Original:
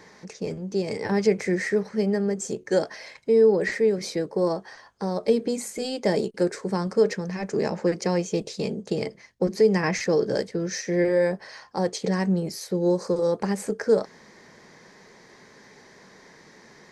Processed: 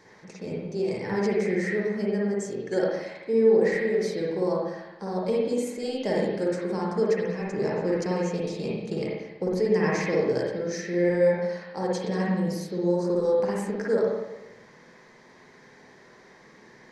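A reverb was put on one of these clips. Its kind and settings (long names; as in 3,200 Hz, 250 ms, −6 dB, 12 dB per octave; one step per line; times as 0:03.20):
spring reverb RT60 1 s, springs 49/57 ms, chirp 40 ms, DRR −4.5 dB
level −7 dB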